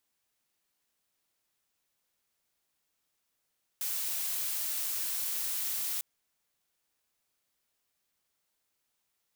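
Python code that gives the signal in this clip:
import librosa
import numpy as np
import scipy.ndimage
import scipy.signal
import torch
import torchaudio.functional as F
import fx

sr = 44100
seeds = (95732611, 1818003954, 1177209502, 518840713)

y = fx.noise_colour(sr, seeds[0], length_s=2.2, colour='blue', level_db=-33.5)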